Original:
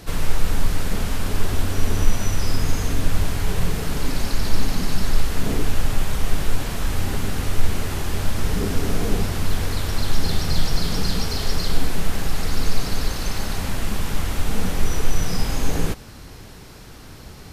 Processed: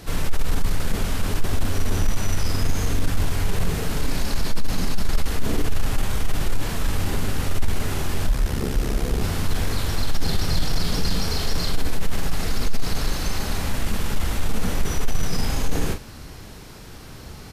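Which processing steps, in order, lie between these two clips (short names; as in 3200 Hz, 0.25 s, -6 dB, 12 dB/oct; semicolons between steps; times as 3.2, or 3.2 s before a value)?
early reflections 28 ms -15.5 dB, 41 ms -7.5 dB; 8.28–9.22 ring modulator 34 Hz; soft clip -9.5 dBFS, distortion -16 dB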